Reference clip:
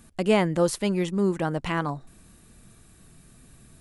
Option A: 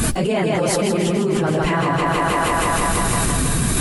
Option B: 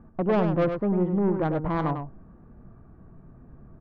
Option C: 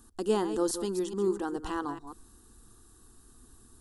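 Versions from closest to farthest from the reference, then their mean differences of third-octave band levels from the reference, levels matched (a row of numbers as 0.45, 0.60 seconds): C, B, A; 4.5, 7.5, 16.5 decibels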